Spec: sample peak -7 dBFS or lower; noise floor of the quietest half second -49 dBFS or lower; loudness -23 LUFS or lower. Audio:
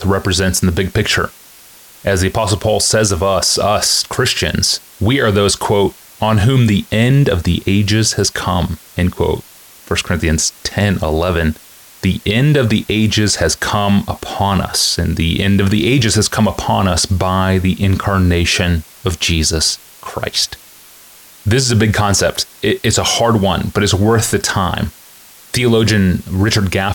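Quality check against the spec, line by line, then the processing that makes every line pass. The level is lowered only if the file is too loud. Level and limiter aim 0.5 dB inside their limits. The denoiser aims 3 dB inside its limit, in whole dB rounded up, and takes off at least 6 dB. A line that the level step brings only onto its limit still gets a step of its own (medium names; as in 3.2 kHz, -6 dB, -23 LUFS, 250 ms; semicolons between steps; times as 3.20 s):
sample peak -3.5 dBFS: fail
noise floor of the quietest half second -41 dBFS: fail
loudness -14.5 LUFS: fail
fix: trim -9 dB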